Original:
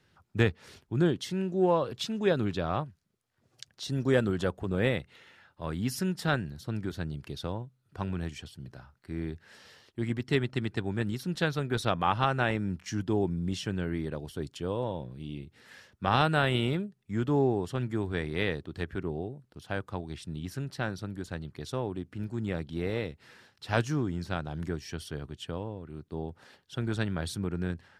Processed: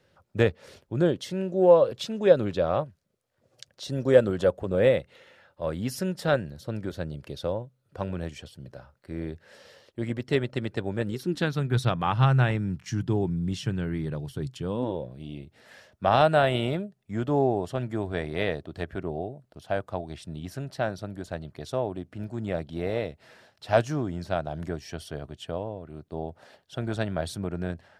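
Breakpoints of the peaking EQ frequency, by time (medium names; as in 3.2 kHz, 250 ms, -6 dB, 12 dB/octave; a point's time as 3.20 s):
peaking EQ +13.5 dB 0.48 oct
11.05 s 550 Hz
11.75 s 130 Hz
14.64 s 130 Hz
15.08 s 640 Hz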